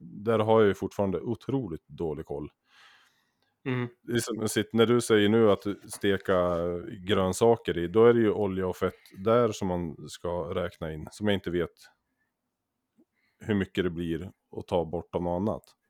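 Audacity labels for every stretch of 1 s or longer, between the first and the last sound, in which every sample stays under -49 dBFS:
11.870000	13.410000	silence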